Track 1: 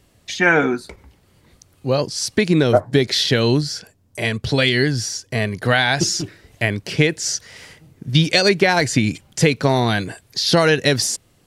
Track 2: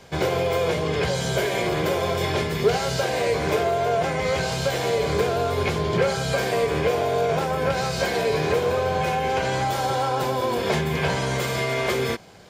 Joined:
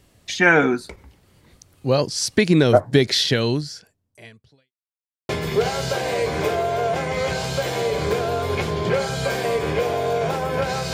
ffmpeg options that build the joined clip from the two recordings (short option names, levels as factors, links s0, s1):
-filter_complex "[0:a]apad=whole_dur=10.93,atrim=end=10.93,asplit=2[s0][s1];[s0]atrim=end=4.72,asetpts=PTS-STARTPTS,afade=t=out:st=3.11:d=1.61:c=qua[s2];[s1]atrim=start=4.72:end=5.29,asetpts=PTS-STARTPTS,volume=0[s3];[1:a]atrim=start=2.37:end=8.01,asetpts=PTS-STARTPTS,afade=t=in:d=0.004:c=hsin[s4];[s2][s3][s4]concat=n=3:v=0:a=1"